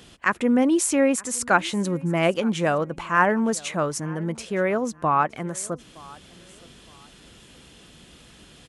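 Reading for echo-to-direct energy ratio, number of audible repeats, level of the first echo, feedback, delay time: -22.5 dB, 2, -23.0 dB, 30%, 0.917 s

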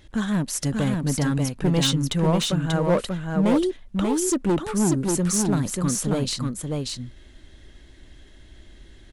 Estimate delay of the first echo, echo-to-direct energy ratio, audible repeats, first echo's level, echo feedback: 0.587 s, -3.5 dB, 1, -3.5 dB, no steady repeat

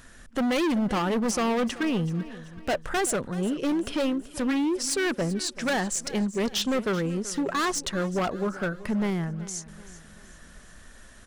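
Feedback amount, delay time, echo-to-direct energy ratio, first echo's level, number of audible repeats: 45%, 0.382 s, -16.0 dB, -17.0 dB, 3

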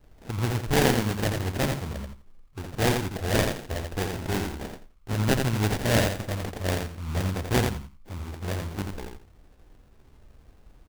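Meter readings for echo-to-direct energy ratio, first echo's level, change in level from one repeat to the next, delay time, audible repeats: -5.0 dB, -5.0 dB, -14.0 dB, 85 ms, 3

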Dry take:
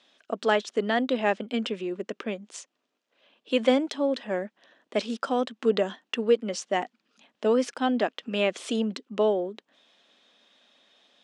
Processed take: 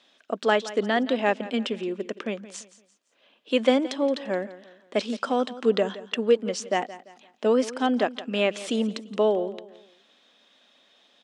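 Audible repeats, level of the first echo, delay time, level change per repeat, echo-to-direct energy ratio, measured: 3, -16.5 dB, 0.171 s, -8.5 dB, -16.0 dB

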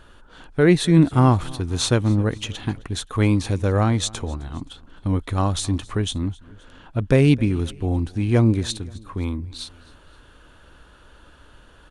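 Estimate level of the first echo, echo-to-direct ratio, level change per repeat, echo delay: -23.0 dB, -22.0 dB, -5.5 dB, 0.262 s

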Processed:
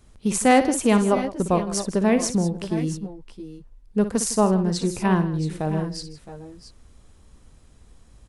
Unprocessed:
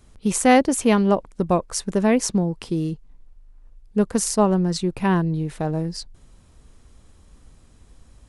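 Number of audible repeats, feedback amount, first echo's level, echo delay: 3, no steady repeat, -11.0 dB, 58 ms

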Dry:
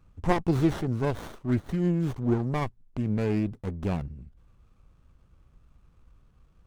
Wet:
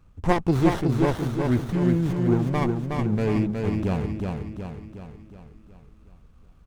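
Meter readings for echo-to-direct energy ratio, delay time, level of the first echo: -2.5 dB, 0.367 s, -4.0 dB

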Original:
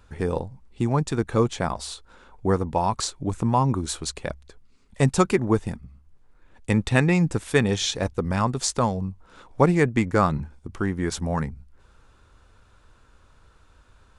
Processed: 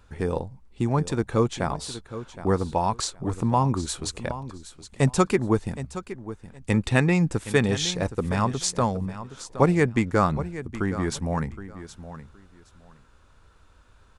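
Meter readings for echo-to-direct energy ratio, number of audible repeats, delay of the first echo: -13.5 dB, 2, 0.768 s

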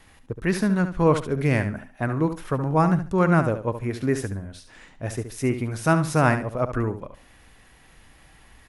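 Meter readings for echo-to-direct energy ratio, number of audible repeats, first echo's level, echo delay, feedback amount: -10.0 dB, 2, -10.0 dB, 71 ms, 21%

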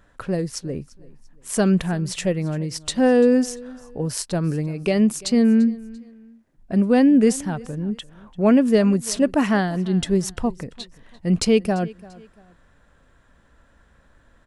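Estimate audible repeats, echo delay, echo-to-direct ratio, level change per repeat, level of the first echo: 2, 0.342 s, -21.0 dB, -9.5 dB, -21.5 dB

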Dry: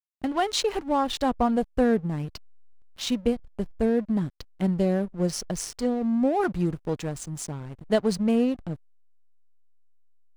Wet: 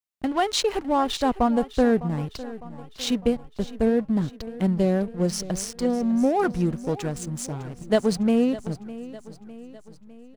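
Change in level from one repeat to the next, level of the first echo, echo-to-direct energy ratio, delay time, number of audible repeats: -5.5 dB, -16.5 dB, -15.0 dB, 0.605 s, 4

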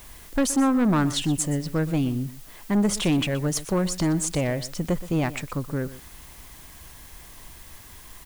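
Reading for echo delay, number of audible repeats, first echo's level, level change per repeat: 0.122 s, 1, -16.0 dB, no steady repeat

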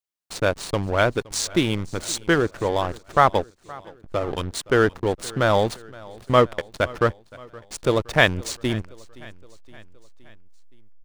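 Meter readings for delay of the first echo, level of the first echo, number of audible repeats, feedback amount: 0.519 s, -22.0 dB, 3, 56%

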